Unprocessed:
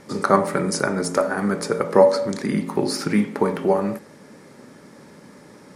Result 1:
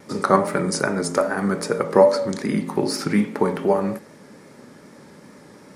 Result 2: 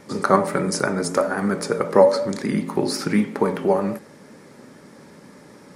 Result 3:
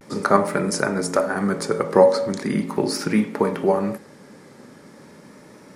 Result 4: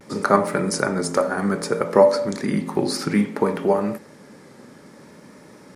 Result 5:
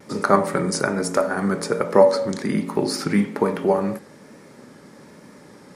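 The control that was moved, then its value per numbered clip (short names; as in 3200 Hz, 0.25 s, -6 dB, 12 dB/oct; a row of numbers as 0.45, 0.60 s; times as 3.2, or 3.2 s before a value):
vibrato, rate: 2.5, 8.2, 0.4, 0.61, 1.2 Hz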